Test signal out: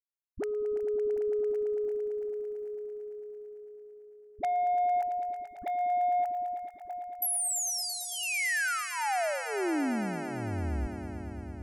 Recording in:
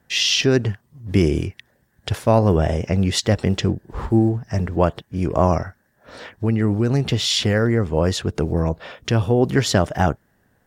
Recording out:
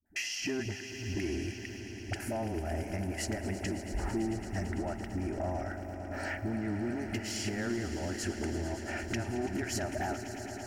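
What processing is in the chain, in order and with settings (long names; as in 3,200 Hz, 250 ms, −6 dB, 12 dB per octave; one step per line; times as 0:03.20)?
noise gate −51 dBFS, range −19 dB
notch filter 1,100 Hz, Q 8.5
brickwall limiter −13.5 dBFS
downward compressor 4 to 1, threshold −33 dBFS
phaser with its sweep stopped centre 730 Hz, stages 8
all-pass dispersion highs, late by 59 ms, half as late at 400 Hz
soft clipping −28.5 dBFS
on a send: echo that builds up and dies away 112 ms, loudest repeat 5, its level −14 dB
on the sum: level +4.5 dB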